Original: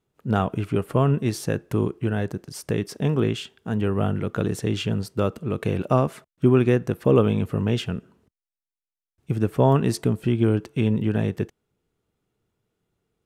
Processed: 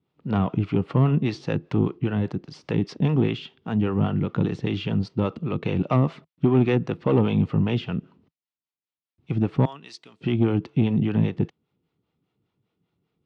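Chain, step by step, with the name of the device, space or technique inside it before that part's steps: 9.65–10.21 s: differentiator; guitar amplifier with harmonic tremolo (harmonic tremolo 5 Hz, depth 70%, crossover 440 Hz; saturation -16.5 dBFS, distortion -15 dB; cabinet simulation 84–4400 Hz, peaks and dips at 160 Hz +5 dB, 280 Hz +3 dB, 430 Hz -4 dB, 620 Hz -4 dB, 1.6 kHz -7 dB); trim +5 dB

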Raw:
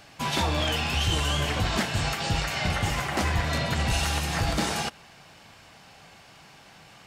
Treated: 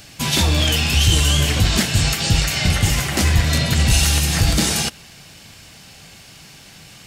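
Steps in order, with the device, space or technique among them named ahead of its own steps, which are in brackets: smiley-face EQ (bass shelf 140 Hz +4 dB; peaking EQ 920 Hz -9 dB 1.8 oct; treble shelf 5.2 kHz +8.5 dB); trim +8.5 dB

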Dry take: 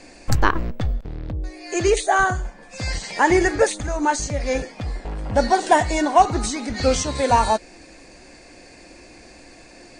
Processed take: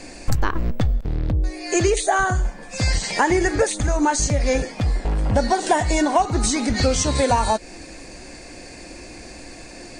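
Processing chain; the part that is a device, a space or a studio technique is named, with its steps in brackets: ASMR close-microphone chain (bass shelf 240 Hz +4.5 dB; compression 5:1, threshold -20 dBFS, peak gain reduction 12 dB; treble shelf 7.3 kHz +7 dB); trim +4.5 dB

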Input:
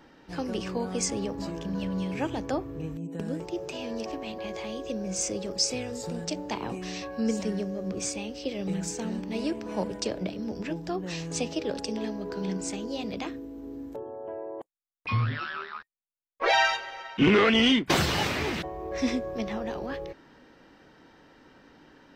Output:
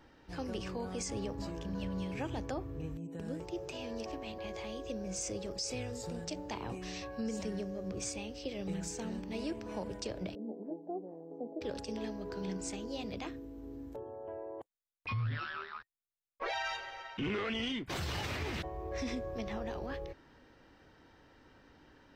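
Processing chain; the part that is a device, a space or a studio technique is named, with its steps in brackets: car stereo with a boomy subwoofer (resonant low shelf 130 Hz +6.5 dB, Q 1.5; peak limiter -22.5 dBFS, peak gain reduction 11.5 dB); 10.35–11.61 s: elliptic band-pass 220–770 Hz, stop band 60 dB; trim -6 dB

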